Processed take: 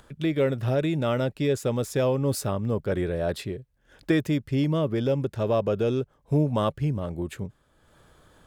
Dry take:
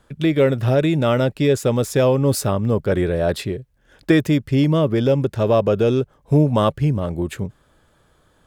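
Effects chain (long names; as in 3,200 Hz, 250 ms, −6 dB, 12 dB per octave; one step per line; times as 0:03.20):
upward compression, threshold −38 dBFS
level −7.5 dB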